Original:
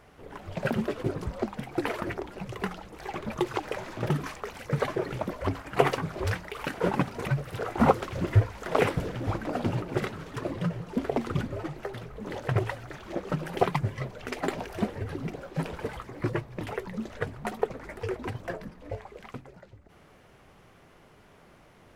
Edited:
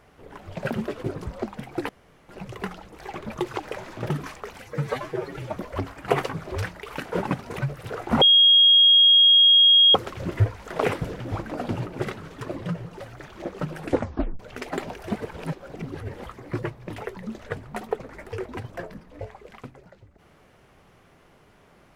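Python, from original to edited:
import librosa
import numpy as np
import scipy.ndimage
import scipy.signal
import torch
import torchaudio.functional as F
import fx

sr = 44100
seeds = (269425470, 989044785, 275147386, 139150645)

y = fx.edit(x, sr, fx.room_tone_fill(start_s=1.89, length_s=0.4),
    fx.stretch_span(start_s=4.62, length_s=0.63, factor=1.5),
    fx.insert_tone(at_s=7.9, length_s=1.73, hz=3270.0, db=-11.5),
    fx.cut(start_s=10.96, length_s=1.75),
    fx.tape_stop(start_s=13.47, length_s=0.63),
    fx.reverse_span(start_s=14.86, length_s=1.08), tone=tone)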